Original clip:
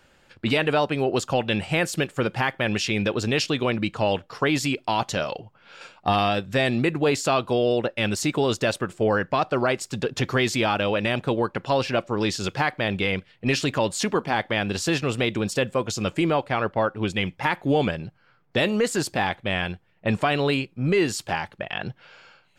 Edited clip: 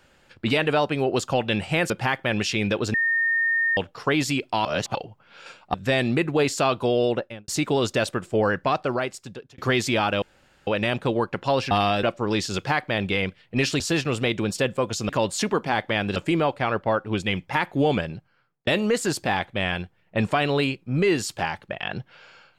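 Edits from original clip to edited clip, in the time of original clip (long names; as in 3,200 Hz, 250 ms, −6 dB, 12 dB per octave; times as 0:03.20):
0:01.90–0:02.25: remove
0:03.29–0:04.12: beep over 1,830 Hz −19 dBFS
0:05.00–0:05.30: reverse
0:06.09–0:06.41: move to 0:11.93
0:07.78–0:08.15: fade out and dull
0:09.37–0:10.25: fade out
0:10.89: splice in room tone 0.45 s
0:13.70–0:14.77: move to 0:16.06
0:18.00–0:18.57: fade out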